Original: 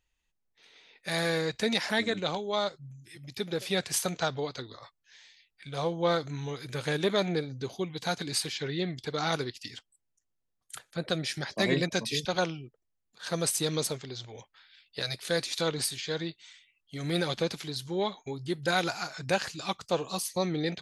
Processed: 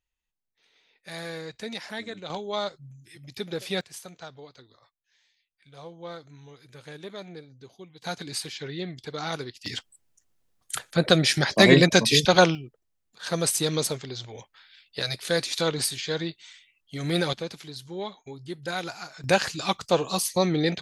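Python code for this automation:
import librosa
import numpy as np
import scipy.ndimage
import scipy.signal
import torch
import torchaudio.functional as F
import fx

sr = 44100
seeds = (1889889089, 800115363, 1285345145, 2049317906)

y = fx.gain(x, sr, db=fx.steps((0.0, -7.5), (2.3, 0.0), (3.81, -12.5), (8.04, -2.0), (9.66, 11.5), (12.55, 4.0), (17.33, -4.0), (19.24, 6.5)))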